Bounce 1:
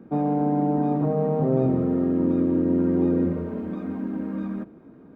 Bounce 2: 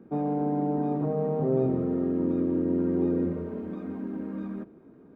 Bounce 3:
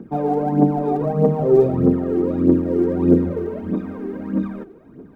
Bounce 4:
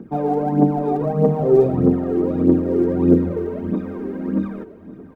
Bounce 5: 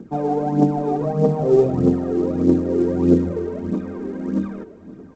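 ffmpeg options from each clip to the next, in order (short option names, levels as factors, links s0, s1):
-af "equalizer=f=400:t=o:w=0.32:g=5.5,volume=0.531"
-af "aphaser=in_gain=1:out_gain=1:delay=2.8:decay=0.66:speed=1.6:type=triangular,volume=2.24"
-af "aecho=1:1:1157:0.15"
-af "volume=0.891" -ar 16000 -c:a pcm_alaw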